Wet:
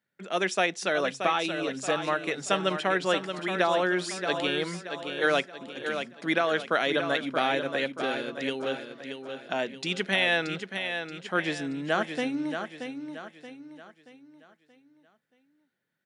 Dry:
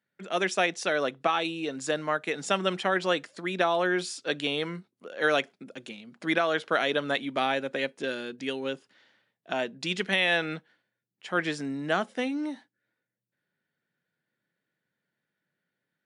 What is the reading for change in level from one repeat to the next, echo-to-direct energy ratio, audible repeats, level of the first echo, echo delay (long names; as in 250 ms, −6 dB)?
−7.5 dB, −6.5 dB, 4, −7.5 dB, 628 ms